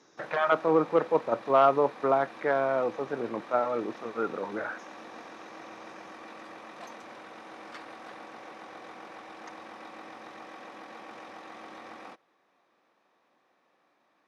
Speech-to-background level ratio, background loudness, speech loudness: 18.0 dB, -45.5 LUFS, -27.5 LUFS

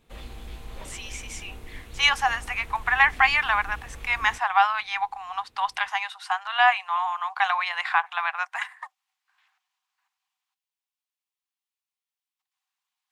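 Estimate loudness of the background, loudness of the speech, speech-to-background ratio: -43.5 LUFS, -24.0 LUFS, 19.5 dB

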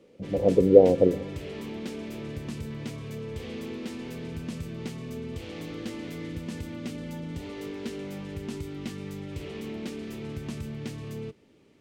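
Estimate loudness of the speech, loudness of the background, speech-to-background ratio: -21.0 LUFS, -37.0 LUFS, 16.0 dB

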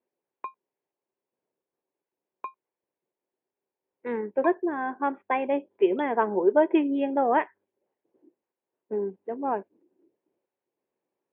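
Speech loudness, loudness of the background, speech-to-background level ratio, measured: -26.5 LUFS, -43.0 LUFS, 16.5 dB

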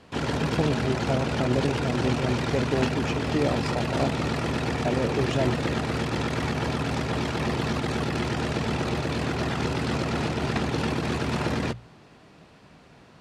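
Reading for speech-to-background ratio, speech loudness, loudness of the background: -2.0 dB, -29.5 LUFS, -27.5 LUFS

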